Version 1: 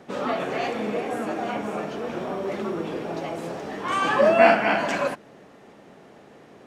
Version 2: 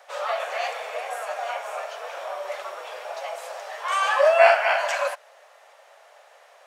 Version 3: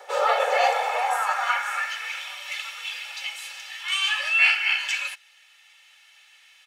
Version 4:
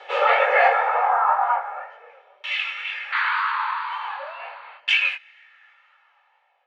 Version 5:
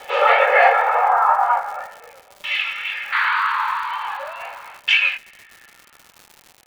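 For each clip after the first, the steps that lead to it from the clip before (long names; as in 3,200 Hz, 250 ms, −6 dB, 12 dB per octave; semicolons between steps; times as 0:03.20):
elliptic high-pass filter 570 Hz, stop band 50 dB; high-shelf EQ 6,100 Hz +7 dB; level +1 dB
comb filter 2.3 ms, depth 75%; speech leveller within 4 dB 2 s; high-pass filter sweep 370 Hz → 2,700 Hz, 0:00.16–0:02.29
sound drawn into the spectrogram noise, 0:03.12–0:04.78, 870–4,700 Hz −25 dBFS; chorus effect 2 Hz, delay 18.5 ms, depth 7.3 ms; auto-filter low-pass saw down 0.41 Hz 390–3,100 Hz; level +4.5 dB
surface crackle 210 per second −35 dBFS; level +3.5 dB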